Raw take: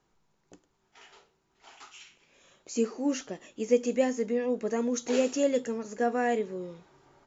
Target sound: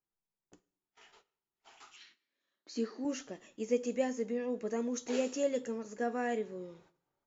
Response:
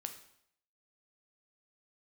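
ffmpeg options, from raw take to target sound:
-filter_complex "[0:a]agate=range=0.112:threshold=0.00158:ratio=16:detection=peak,asettb=1/sr,asplit=3[s0][s1][s2];[s0]atrim=end=1.964[s3];[s1]atrim=start=1.96:end=3.05,asetpts=PTS-STARTPTS,afade=t=in:d=0.004:c=qsin,afade=t=out:st=1.086:d=0.004:c=qsin,highpass=230,equalizer=f=280:t=q:w=4:g=7,equalizer=f=490:t=q:w=4:g=-5,equalizer=f=800:t=q:w=4:g=-4,equalizer=f=1800:t=q:w=4:g=9,equalizer=f=2500:t=q:w=4:g=-6,equalizer=f=4200:t=q:w=4:g=9,lowpass=f=5500:w=0.5412,lowpass=f=5500:w=1.3066[s4];[s2]atrim=start=3.046[s5];[s3][s4]acrossfade=d=0.004:c1=hsin:c2=qsin[s6];[s6][s5]acrossfade=d=0.004:c1=qsin:c2=hsin,asplit=2[s7][s8];[1:a]atrim=start_sample=2205,adelay=9[s9];[s8][s9]afir=irnorm=-1:irlink=0,volume=0.299[s10];[s7][s10]amix=inputs=2:normalize=0,volume=0.473"

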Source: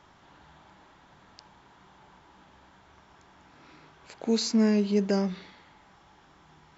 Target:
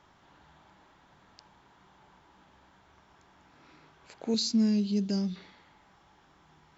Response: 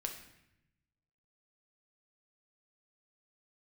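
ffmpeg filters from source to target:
-filter_complex "[0:a]asettb=1/sr,asplit=3[s0][s1][s2];[s0]atrim=end=4.344[s3];[s1]atrim=start=4.34:end=5.36,asetpts=PTS-STARTPTS,afade=t=in:d=0.004:c=qsin,afade=t=out:st=1.016:d=0.004:c=qsin,equalizer=f=125:t=o:w=1:g=4,equalizer=f=250:t=o:w=1:g=3,equalizer=f=500:t=o:w=1:g=-9,equalizer=f=1000:t=o:w=1:g=-8,equalizer=f=2000:t=o:w=1:g=-9,equalizer=f=4000:t=o:w=1:g=7[s4];[s2]atrim=start=5.356[s5];[s3][s4]acrossfade=d=0.004:c1=hsin:c2=qsin[s6];[s6][s5]acrossfade=d=0.004:c1=qsin:c2=hsin,volume=0.631"

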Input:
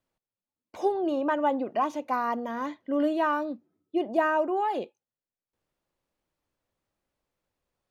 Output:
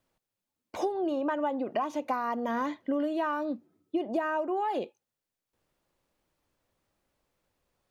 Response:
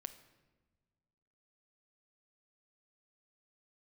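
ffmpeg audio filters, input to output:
-af "acompressor=threshold=0.0251:ratio=10,volume=1.88"

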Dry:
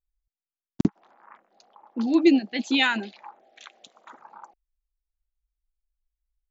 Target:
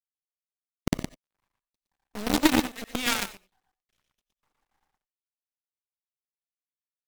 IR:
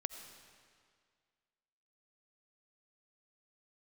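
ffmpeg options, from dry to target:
-filter_complex "[0:a]highshelf=f=4400:g=6,asplit=2[s0][s1];[s1]alimiter=limit=0.141:level=0:latency=1:release=81,volume=1.26[s2];[s0][s2]amix=inputs=2:normalize=0,acrusher=bits=4:dc=4:mix=0:aa=0.000001,aecho=1:1:106:0.708,aeval=exprs='0.944*(cos(1*acos(clip(val(0)/0.944,-1,1)))-cos(1*PI/2))+0.266*(cos(3*acos(clip(val(0)/0.944,-1,1)))-cos(3*PI/2))+0.075*(cos(4*acos(clip(val(0)/0.944,-1,1)))-cos(4*PI/2))+0.0266*(cos(6*acos(clip(val(0)/0.944,-1,1)))-cos(6*PI/2))+0.0237*(cos(7*acos(clip(val(0)/0.944,-1,1)))-cos(7*PI/2))':c=same[s3];[1:a]atrim=start_sample=2205,atrim=end_sample=3969[s4];[s3][s4]afir=irnorm=-1:irlink=0,asetrate=40517,aresample=44100,volume=0.841"

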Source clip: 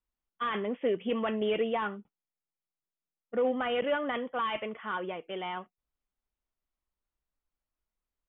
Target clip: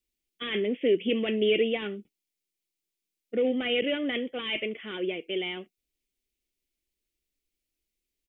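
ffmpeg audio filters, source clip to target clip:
-af "firequalizer=gain_entry='entry(140,0);entry(350,10);entry(510,1);entry(1000,-17);entry(2200,9)':delay=0.05:min_phase=1"

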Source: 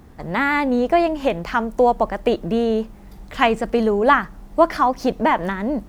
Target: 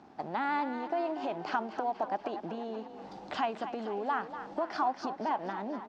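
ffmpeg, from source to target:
-filter_complex "[0:a]equalizer=f=2100:t=o:w=1.6:g=-12.5,dynaudnorm=f=110:g=11:m=3.76,alimiter=limit=0.335:level=0:latency=1,acompressor=threshold=0.0316:ratio=6,aeval=exprs='sgn(val(0))*max(abs(val(0))-0.00133,0)':c=same,highpass=330,equalizer=f=490:t=q:w=4:g=-9,equalizer=f=800:t=q:w=4:g=8,equalizer=f=1500:t=q:w=4:g=4,equalizer=f=2600:t=q:w=4:g=4,lowpass=f=5200:w=0.5412,lowpass=f=5200:w=1.3066,asplit=2[s0][s1];[s1]asplit=6[s2][s3][s4][s5][s6][s7];[s2]adelay=240,afreqshift=34,volume=0.282[s8];[s3]adelay=480,afreqshift=68,volume=0.16[s9];[s4]adelay=720,afreqshift=102,volume=0.0912[s10];[s5]adelay=960,afreqshift=136,volume=0.0525[s11];[s6]adelay=1200,afreqshift=170,volume=0.0299[s12];[s7]adelay=1440,afreqshift=204,volume=0.017[s13];[s8][s9][s10][s11][s12][s13]amix=inputs=6:normalize=0[s14];[s0][s14]amix=inputs=2:normalize=0"

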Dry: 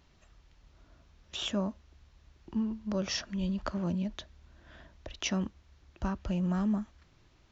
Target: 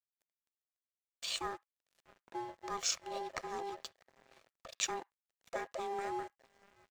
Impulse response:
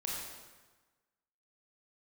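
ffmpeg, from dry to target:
-filter_complex "[0:a]asplit=2[s0][s1];[s1]adelay=699.7,volume=0.126,highshelf=f=4000:g=-15.7[s2];[s0][s2]amix=inputs=2:normalize=0,aeval=exprs='val(0)*sin(2*PI*550*n/s)':c=same,aemphasis=mode=production:type=bsi,aecho=1:1:1.9:0.31,asetrate=48000,aresample=44100,aeval=exprs='sgn(val(0))*max(abs(val(0))-0.00316,0)':c=same,asplit=2[s3][s4];[s4]highpass=f=1300:t=q:w=2.1[s5];[1:a]atrim=start_sample=2205,atrim=end_sample=3528,lowpass=3100[s6];[s5][s6]afir=irnorm=-1:irlink=0,volume=0.0562[s7];[s3][s7]amix=inputs=2:normalize=0,volume=0.794"

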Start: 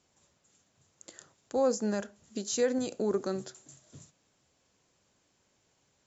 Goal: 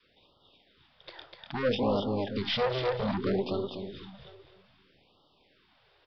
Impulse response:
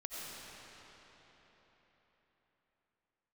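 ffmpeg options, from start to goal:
-filter_complex "[0:a]aeval=exprs='if(lt(val(0),0),0.708*val(0),val(0))':c=same,adynamicequalizer=threshold=0.00562:dfrequency=220:dqfactor=0.75:tfrequency=220:tqfactor=0.75:attack=5:release=100:ratio=0.375:range=1.5:mode=boostabove:tftype=bell,asplit=2[s0][s1];[s1]aecho=0:1:247|494|741|988:0.596|0.179|0.0536|0.0161[s2];[s0][s2]amix=inputs=2:normalize=0,asplit=2[s3][s4];[s4]asetrate=22050,aresample=44100,atempo=2,volume=0.891[s5];[s3][s5]amix=inputs=2:normalize=0,aresample=11025,asoftclip=type=tanh:threshold=0.0398,aresample=44100,bass=f=250:g=-8,treble=f=4000:g=-3,asplit=2[s6][s7];[s7]adelay=758,volume=0.112,highshelf=f=4000:g=-17.1[s8];[s6][s8]amix=inputs=2:normalize=0,afftfilt=real='re*(1-between(b*sr/1024,210*pow(2000/210,0.5+0.5*sin(2*PI*0.62*pts/sr))/1.41,210*pow(2000/210,0.5+0.5*sin(2*PI*0.62*pts/sr))*1.41))':imag='im*(1-between(b*sr/1024,210*pow(2000/210,0.5+0.5*sin(2*PI*0.62*pts/sr))/1.41,210*pow(2000/210,0.5+0.5*sin(2*PI*0.62*pts/sr))*1.41))':win_size=1024:overlap=0.75,volume=2.37"

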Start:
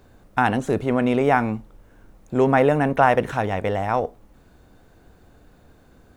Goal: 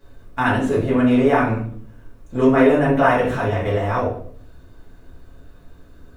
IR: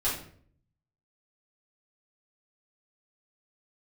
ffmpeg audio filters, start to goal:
-filter_complex "[0:a]asuperstop=centerf=790:order=4:qfactor=7.9[s0];[1:a]atrim=start_sample=2205[s1];[s0][s1]afir=irnorm=-1:irlink=0,volume=0.501"

